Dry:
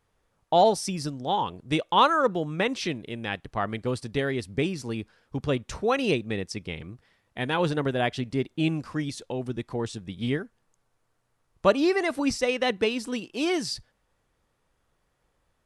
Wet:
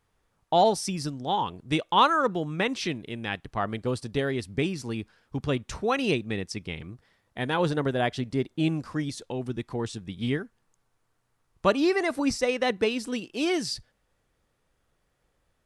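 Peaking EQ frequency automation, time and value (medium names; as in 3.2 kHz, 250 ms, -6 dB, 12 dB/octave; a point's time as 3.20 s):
peaking EQ -3.5 dB 0.55 oct
540 Hz
from 3.59 s 2.1 kHz
from 4.36 s 520 Hz
from 6.91 s 2.6 kHz
from 9.23 s 570 Hz
from 12.00 s 3 kHz
from 12.88 s 980 Hz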